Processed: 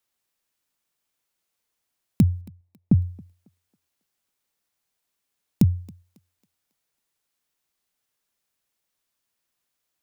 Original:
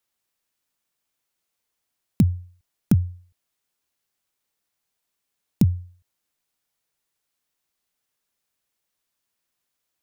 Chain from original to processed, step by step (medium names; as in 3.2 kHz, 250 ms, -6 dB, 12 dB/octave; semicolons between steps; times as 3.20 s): 2.41–2.99 s: boxcar filter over 29 samples; thinning echo 274 ms, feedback 41%, high-pass 330 Hz, level -21 dB